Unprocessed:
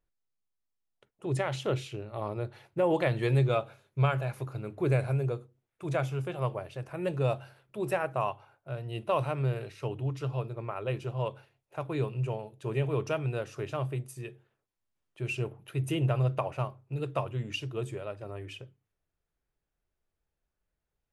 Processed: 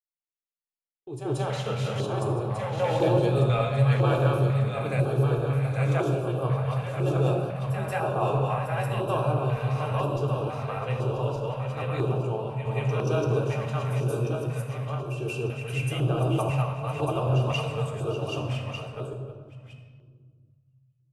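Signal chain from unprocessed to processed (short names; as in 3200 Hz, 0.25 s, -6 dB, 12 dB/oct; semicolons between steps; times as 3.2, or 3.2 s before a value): regenerating reverse delay 0.598 s, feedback 56%, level -2 dB; gate -38 dBFS, range -47 dB; reverse echo 0.181 s -8 dB; reverb RT60 1.7 s, pre-delay 3 ms, DRR 0.5 dB; LFO notch square 1 Hz 350–2000 Hz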